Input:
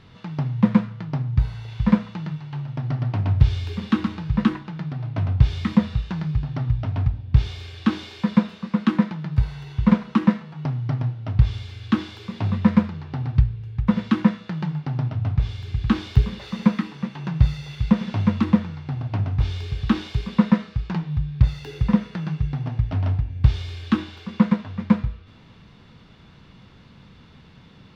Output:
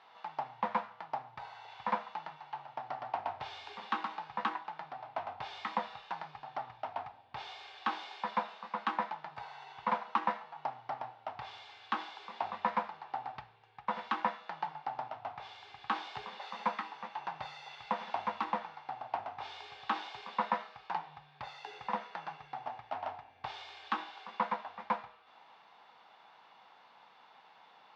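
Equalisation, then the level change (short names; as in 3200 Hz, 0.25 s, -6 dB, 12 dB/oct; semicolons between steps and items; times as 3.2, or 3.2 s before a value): resonant high-pass 800 Hz, resonance Q 4.4; air absorption 97 m; -7.0 dB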